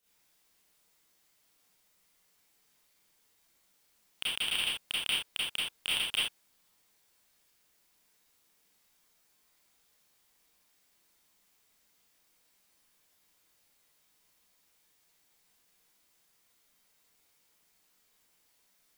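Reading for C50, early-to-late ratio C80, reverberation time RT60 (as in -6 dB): -2.0 dB, 5.0 dB, no single decay rate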